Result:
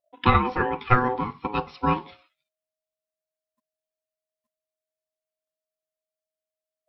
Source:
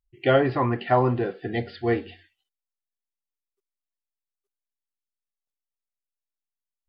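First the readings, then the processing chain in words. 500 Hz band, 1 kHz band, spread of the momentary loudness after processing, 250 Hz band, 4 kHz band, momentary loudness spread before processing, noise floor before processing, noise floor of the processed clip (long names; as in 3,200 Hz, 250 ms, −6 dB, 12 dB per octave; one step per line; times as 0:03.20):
−6.5 dB, +4.0 dB, 9 LU, −1.5 dB, +0.5 dB, 8 LU, below −85 dBFS, below −85 dBFS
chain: transient designer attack +7 dB, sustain 0 dB
ring modulation 630 Hz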